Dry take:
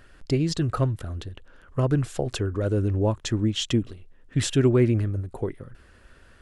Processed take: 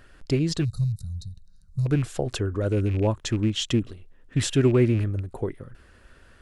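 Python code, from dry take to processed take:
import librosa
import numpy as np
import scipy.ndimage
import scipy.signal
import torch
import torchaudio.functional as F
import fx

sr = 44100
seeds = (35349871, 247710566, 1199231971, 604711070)

y = fx.rattle_buzz(x, sr, strikes_db=-23.0, level_db=-31.0)
y = fx.spec_box(y, sr, start_s=0.64, length_s=1.22, low_hz=210.0, high_hz=3700.0, gain_db=-29)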